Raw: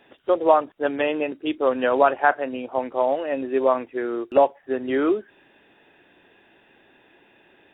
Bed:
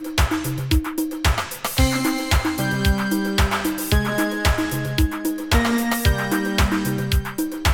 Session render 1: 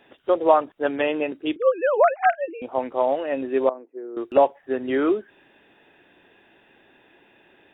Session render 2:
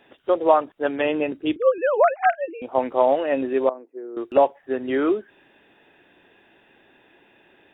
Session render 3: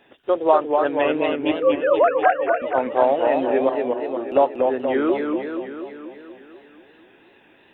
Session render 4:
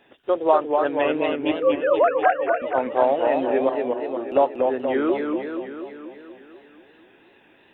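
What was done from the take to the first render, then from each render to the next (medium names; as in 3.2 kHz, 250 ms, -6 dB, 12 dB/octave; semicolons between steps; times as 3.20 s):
1.56–2.62 s: formants replaced by sine waves; 3.69–4.17 s: ladder band-pass 440 Hz, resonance 35%
1.05–1.78 s: bass shelf 160 Hz +11 dB; 2.75–3.53 s: gain +3.5 dB
modulated delay 241 ms, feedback 61%, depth 152 cents, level -4 dB
trim -1.5 dB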